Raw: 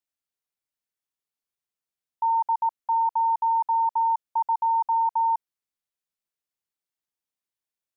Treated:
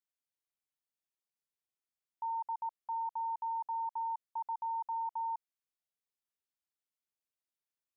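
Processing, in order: peak limiter -25.5 dBFS, peak gain reduction 6.5 dB; trim -7 dB

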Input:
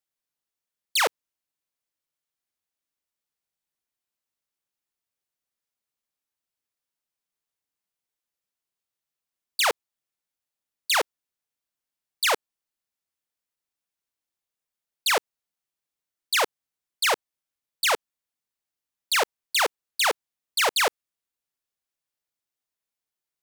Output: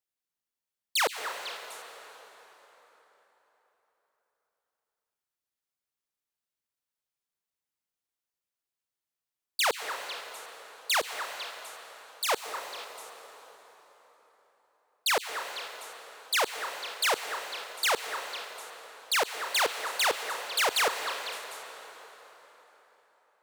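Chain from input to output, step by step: 11.00–12.29 s: peaking EQ 1.2 kHz -14 dB 2.2 oct; repeats whose band climbs or falls 250 ms, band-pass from 1.3 kHz, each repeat 1.4 oct, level -7 dB; plate-style reverb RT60 4.3 s, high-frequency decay 0.7×, pre-delay 110 ms, DRR 7.5 dB; trim -4 dB

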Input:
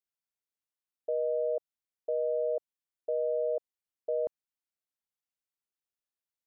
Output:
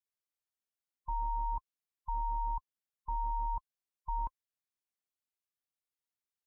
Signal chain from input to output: every band turned upside down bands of 500 Hz; trim -3.5 dB

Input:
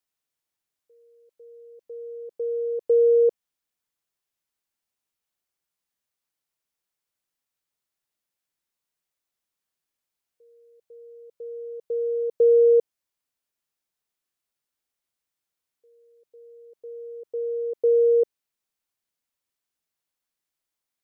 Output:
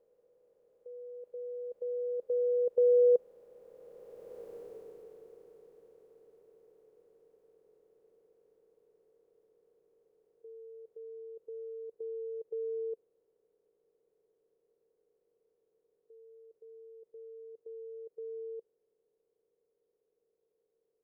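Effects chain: spectral levelling over time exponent 0.4; Doppler pass-by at 4.51 s, 14 m/s, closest 4.4 m; trim +7.5 dB

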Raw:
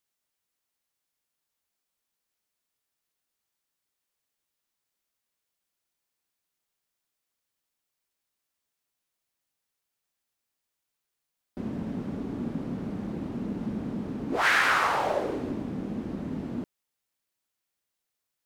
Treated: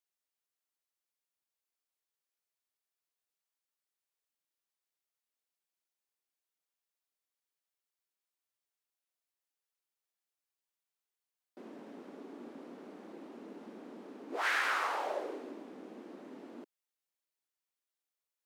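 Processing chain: high-pass 310 Hz 24 dB/octave; trim -9 dB

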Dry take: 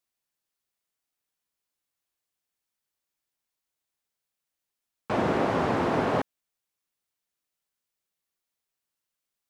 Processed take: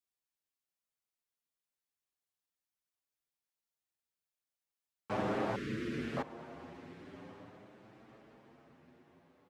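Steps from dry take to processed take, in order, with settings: 5.55–6.17 s: Chebyshev band-stop 340–1900 Hz, order 2; echo that smears into a reverb 1147 ms, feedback 42%, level -14 dB; endless flanger 7.7 ms +0.41 Hz; trim -6 dB

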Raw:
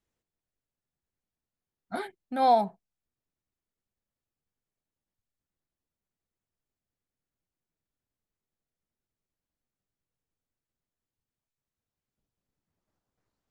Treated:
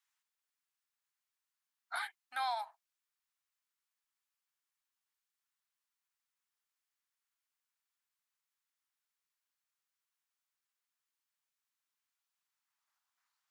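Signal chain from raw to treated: inverse Chebyshev high-pass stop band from 490 Hz, stop band 40 dB; compression 5:1, threshold -37 dBFS, peak gain reduction 9 dB; trim +3.5 dB

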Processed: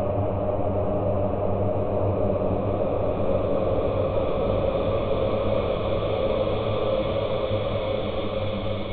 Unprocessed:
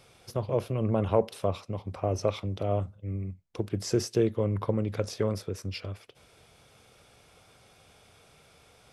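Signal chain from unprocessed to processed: LPC vocoder at 8 kHz pitch kept; Paulstretch 24×, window 0.50 s, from 2.04 s; trim +5 dB

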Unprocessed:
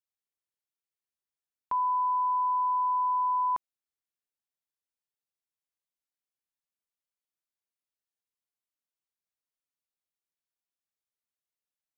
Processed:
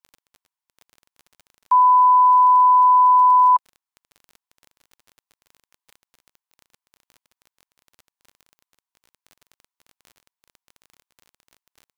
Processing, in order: elliptic high-pass 720 Hz; peaking EQ 990 Hz +13 dB 0.36 oct; crackle 28 per s -36 dBFS; trim +2 dB

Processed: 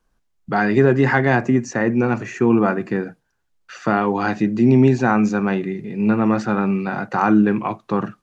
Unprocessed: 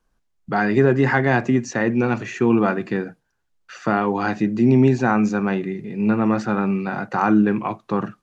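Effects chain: 1.35–3.03 s: peaking EQ 3.5 kHz -7.5 dB 0.86 oct; trim +1.5 dB

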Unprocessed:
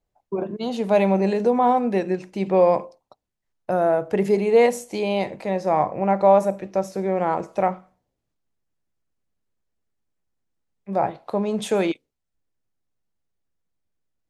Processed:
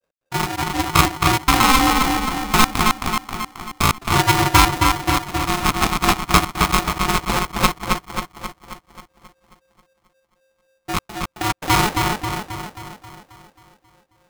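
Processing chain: sample-and-hold 34×; granulator, spray 34 ms, pitch spread up and down by 0 st; trance gate "x.xxxx.x.x.." 142 bpm -60 dB; on a send: filtered feedback delay 268 ms, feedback 56%, low-pass 3.1 kHz, level -3 dB; on the sum: polarity switched at an audio rate 530 Hz; trim +4.5 dB

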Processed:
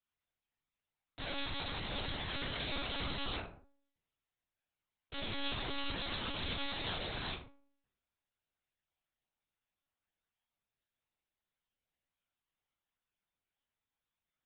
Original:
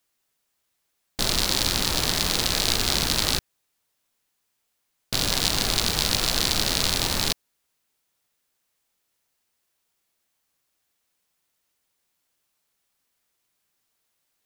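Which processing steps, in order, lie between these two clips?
inharmonic resonator 76 Hz, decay 0.71 s, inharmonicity 0.002; monotone LPC vocoder at 8 kHz 280 Hz

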